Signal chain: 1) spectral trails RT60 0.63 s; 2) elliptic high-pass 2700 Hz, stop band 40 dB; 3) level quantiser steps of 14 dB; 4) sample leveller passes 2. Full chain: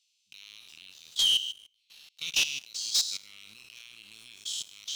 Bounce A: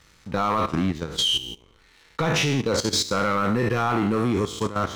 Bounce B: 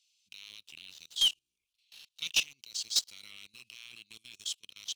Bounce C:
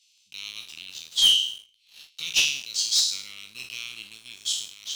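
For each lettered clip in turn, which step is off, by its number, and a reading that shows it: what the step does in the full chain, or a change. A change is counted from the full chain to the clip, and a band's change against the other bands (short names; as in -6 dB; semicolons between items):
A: 2, 1 kHz band +32.5 dB; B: 1, crest factor change +3.0 dB; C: 3, momentary loudness spread change -3 LU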